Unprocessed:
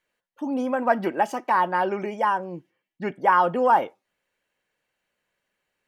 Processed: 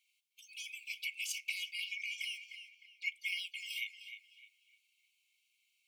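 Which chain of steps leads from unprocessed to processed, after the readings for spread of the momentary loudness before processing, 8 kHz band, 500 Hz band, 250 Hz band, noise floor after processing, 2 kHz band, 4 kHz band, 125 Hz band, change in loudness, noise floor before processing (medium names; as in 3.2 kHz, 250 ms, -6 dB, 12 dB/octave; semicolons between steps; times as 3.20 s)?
14 LU, no reading, under -40 dB, under -40 dB, -78 dBFS, -8.5 dB, +5.5 dB, under -40 dB, -16.5 dB, -84 dBFS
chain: brick-wall FIR high-pass 2.1 kHz; tape echo 304 ms, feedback 38%, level -8 dB, low-pass 3.6 kHz; trim +5 dB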